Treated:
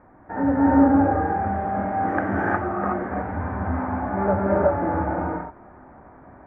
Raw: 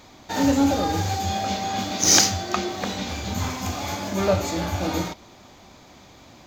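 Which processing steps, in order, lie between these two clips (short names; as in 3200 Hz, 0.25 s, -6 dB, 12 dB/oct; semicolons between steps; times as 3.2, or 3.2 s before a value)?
elliptic low-pass 1700 Hz, stop band 60 dB; non-linear reverb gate 0.39 s rising, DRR -4.5 dB; gain -2 dB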